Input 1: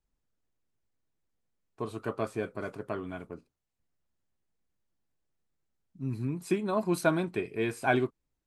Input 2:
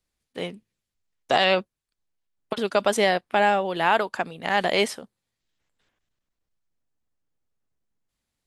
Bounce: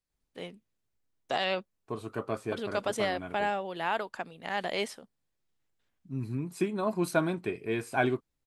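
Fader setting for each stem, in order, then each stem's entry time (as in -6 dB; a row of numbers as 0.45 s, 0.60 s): -1.0 dB, -10.0 dB; 0.10 s, 0.00 s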